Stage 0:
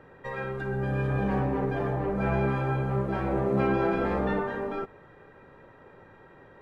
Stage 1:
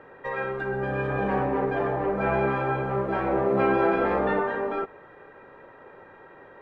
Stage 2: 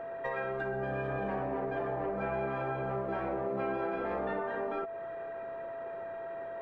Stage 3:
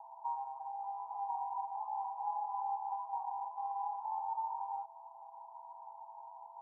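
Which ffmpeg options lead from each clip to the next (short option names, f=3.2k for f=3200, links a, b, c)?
-af "bass=f=250:g=-11,treble=f=4k:g=-12,volume=5.5dB"
-af "acompressor=threshold=-34dB:ratio=4,aeval=exprs='val(0)+0.0126*sin(2*PI*670*n/s)':c=same"
-af "asuperpass=centerf=890:order=8:qfactor=4.1,volume=6dB"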